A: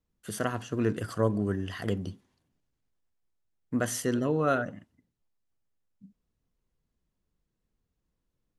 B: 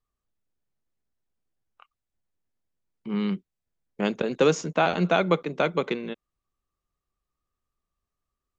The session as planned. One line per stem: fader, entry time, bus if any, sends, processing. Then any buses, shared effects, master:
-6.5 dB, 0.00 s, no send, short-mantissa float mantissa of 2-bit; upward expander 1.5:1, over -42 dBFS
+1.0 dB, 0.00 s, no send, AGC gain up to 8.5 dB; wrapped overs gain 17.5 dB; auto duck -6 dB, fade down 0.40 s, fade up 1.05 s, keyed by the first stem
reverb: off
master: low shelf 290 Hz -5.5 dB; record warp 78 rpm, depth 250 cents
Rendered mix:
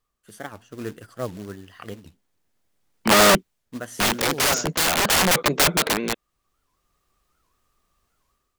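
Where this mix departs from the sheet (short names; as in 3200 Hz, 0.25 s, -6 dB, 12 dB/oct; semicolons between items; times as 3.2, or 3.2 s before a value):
stem A -6.5 dB -> -0.5 dB; stem B +1.0 dB -> +9.0 dB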